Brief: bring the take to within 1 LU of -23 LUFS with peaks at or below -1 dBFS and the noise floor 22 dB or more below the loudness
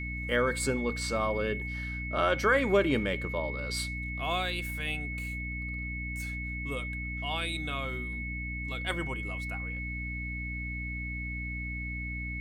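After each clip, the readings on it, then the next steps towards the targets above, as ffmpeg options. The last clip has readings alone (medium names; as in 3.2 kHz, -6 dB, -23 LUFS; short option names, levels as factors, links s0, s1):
hum 60 Hz; highest harmonic 300 Hz; hum level -35 dBFS; steady tone 2.2 kHz; tone level -37 dBFS; loudness -32.0 LUFS; peak level -13.0 dBFS; loudness target -23.0 LUFS
-> -af "bandreject=f=60:t=h:w=6,bandreject=f=120:t=h:w=6,bandreject=f=180:t=h:w=6,bandreject=f=240:t=h:w=6,bandreject=f=300:t=h:w=6"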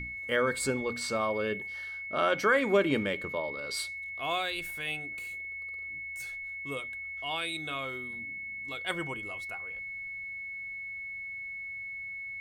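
hum not found; steady tone 2.2 kHz; tone level -37 dBFS
-> -af "bandreject=f=2200:w=30"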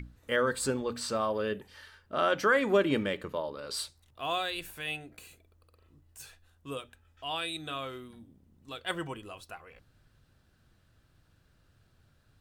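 steady tone not found; loudness -32.0 LUFS; peak level -14.5 dBFS; loudness target -23.0 LUFS
-> -af "volume=2.82"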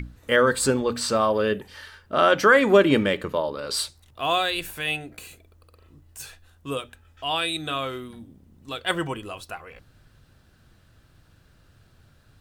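loudness -23.0 LUFS; peak level -5.5 dBFS; noise floor -58 dBFS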